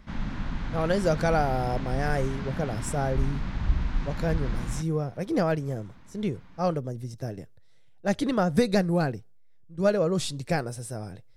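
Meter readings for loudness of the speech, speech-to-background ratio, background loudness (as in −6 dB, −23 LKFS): −28.5 LKFS, 5.5 dB, −34.0 LKFS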